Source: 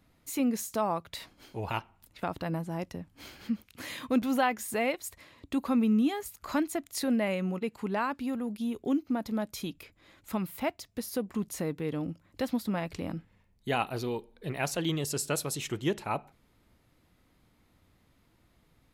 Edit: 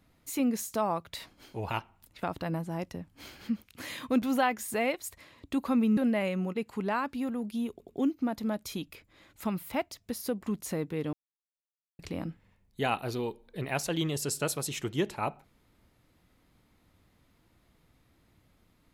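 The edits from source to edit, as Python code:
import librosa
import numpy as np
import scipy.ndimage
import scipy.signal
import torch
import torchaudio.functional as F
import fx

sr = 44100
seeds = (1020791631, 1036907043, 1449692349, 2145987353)

y = fx.edit(x, sr, fx.cut(start_s=5.97, length_s=1.06),
    fx.stutter(start_s=8.77, slice_s=0.09, count=3),
    fx.silence(start_s=12.01, length_s=0.86), tone=tone)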